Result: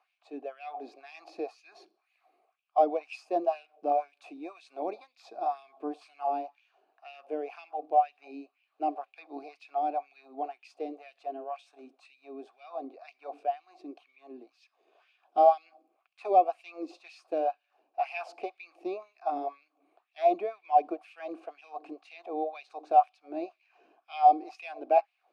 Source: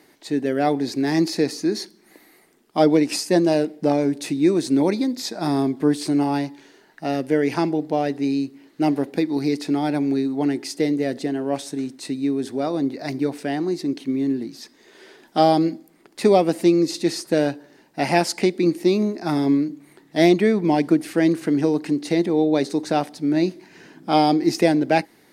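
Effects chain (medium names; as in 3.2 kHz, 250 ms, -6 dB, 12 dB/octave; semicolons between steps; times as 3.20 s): dynamic bell 780 Hz, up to +5 dB, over -32 dBFS, Q 1.2; LFO high-pass sine 2 Hz 280–2600 Hz; vowel filter a; trim -5 dB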